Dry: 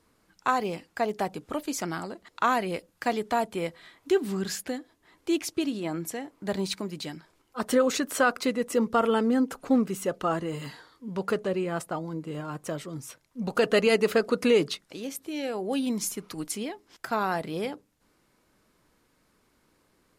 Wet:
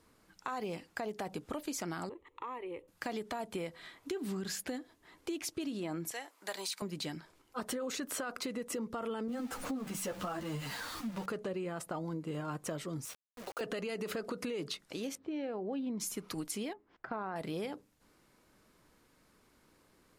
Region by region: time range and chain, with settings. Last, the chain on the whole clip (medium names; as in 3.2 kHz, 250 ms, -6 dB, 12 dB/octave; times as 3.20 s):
2.09–2.88 s: low-pass 1.4 kHz 6 dB/octave + compression 3:1, threshold -38 dBFS + static phaser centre 1 kHz, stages 8
6.11–6.82 s: high-pass 780 Hz + treble shelf 4.8 kHz +7 dB
9.28–11.26 s: jump at every zero crossing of -34.5 dBFS + peaking EQ 400 Hz -13.5 dB 0.21 oct + three-phase chorus
13.05–13.61 s: high-pass 390 Hz 24 dB/octave + compression 2.5:1, threshold -42 dBFS + word length cut 8-bit, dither none
15.15–16.00 s: high-pass 41 Hz + tape spacing loss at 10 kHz 34 dB
16.73–17.36 s: low-pass 1.7 kHz + upward expansion, over -37 dBFS
whole clip: peak limiter -23 dBFS; compression, threshold -35 dBFS